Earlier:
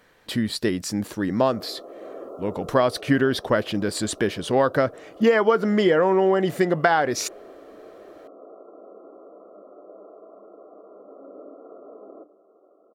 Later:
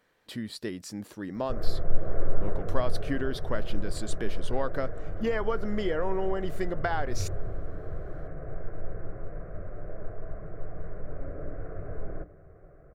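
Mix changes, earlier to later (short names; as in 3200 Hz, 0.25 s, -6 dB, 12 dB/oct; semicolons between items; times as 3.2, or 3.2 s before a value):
speech -11.5 dB; background: remove brick-wall FIR band-pass 210–1400 Hz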